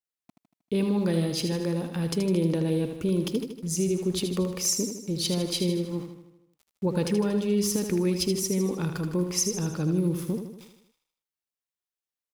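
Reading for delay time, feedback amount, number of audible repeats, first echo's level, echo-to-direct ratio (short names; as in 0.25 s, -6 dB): 78 ms, 55%, 6, -7.5 dB, -6.0 dB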